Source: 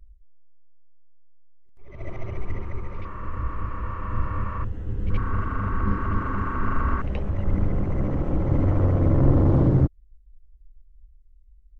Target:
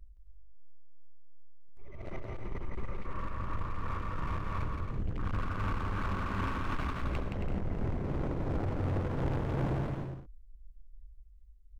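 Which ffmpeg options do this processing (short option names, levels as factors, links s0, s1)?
-filter_complex "[0:a]asettb=1/sr,asplit=3[s0][s1][s2];[s0]atrim=end=2.084[s3];[s1]atrim=start=2.08:end=3.32,asetpts=PTS-STARTPTS,afade=t=in:d=0.004:c=qsin,afade=t=out:st=1.236:d=0.004:c=qsin,equalizer=f=81:w=5.4:g=-13.5[s4];[s2]atrim=start=3.316[s5];[s3][s4]acrossfade=d=0.004:c1=hsin:c2=qsin[s6];[s6][s5]acrossfade=d=0.004:c1=qsin:c2=hsin,asoftclip=type=hard:threshold=0.0376,tremolo=f=2.8:d=0.45,aecho=1:1:170|272|333.2|369.9|392:0.631|0.398|0.251|0.158|0.1,volume=0.794"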